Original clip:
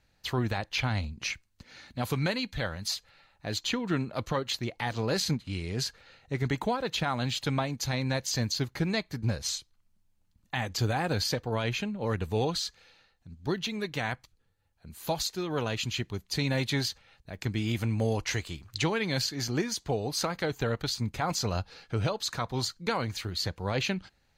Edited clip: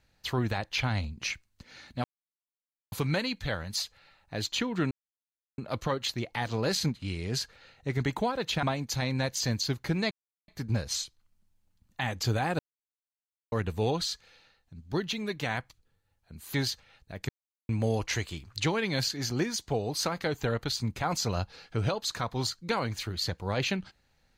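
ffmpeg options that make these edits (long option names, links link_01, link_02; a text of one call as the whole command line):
ffmpeg -i in.wav -filter_complex "[0:a]asplit=10[link_01][link_02][link_03][link_04][link_05][link_06][link_07][link_08][link_09][link_10];[link_01]atrim=end=2.04,asetpts=PTS-STARTPTS,afade=type=out:start_time=2.036:duration=0.004:curve=hsin,apad=pad_dur=0.88[link_11];[link_02]atrim=start=2.04:end=4.03,asetpts=PTS-STARTPTS,afade=type=in:duration=0.004:curve=hsin,afade=type=out:start_time=1.986:duration=0.004:curve=hsin,apad=pad_dur=0.67[link_12];[link_03]atrim=start=4.03:end=7.082,asetpts=PTS-STARTPTS,afade=type=in:duration=0.004:curve=hsin[link_13];[link_04]atrim=start=7.538:end=9.02,asetpts=PTS-STARTPTS,afade=type=out:start_time=1.478:duration=0.004:curve=hsin,apad=pad_dur=0.37[link_14];[link_05]atrim=start=9.02:end=11.13,asetpts=PTS-STARTPTS,afade=type=in:duration=0.004:curve=hsin,afade=type=out:start_time=2.106:duration=0.004:curve=hsin[link_15];[link_06]atrim=start=11.13:end=12.06,asetpts=PTS-STARTPTS,volume=0[link_16];[link_07]atrim=start=12.06:end=15.082,asetpts=PTS-STARTPTS,afade=type=in:duration=0.004:curve=hsin[link_17];[link_08]atrim=start=16.718:end=17.47,asetpts=PTS-STARTPTS,afade=type=out:start_time=0.748:duration=0.004:curve=hsin[link_18];[link_09]atrim=start=17.47:end=17.87,asetpts=PTS-STARTPTS,volume=0[link_19];[link_10]atrim=start=17.87,asetpts=PTS-STARTPTS,afade=type=in:duration=0.004:curve=hsin[link_20];[link_11][link_12][link_13]concat=n=3:v=0:a=1[link_21];[link_14][link_15][link_16][link_17]concat=n=4:v=0:a=1[link_22];[link_21][link_22]acrossfade=duration=0.004:curve1=hsin:curve2=hsin[link_23];[link_18][link_19][link_20]concat=n=3:v=0:a=1[link_24];[link_23][link_24]acrossfade=duration=0.004:curve1=hsin:curve2=hsin" out.wav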